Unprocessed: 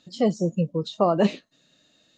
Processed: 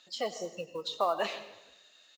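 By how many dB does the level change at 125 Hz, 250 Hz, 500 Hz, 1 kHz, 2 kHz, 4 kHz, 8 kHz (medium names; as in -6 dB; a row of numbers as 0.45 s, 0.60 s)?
-27.0 dB, -23.0 dB, -10.0 dB, -4.5 dB, -1.0 dB, -0.5 dB, no reading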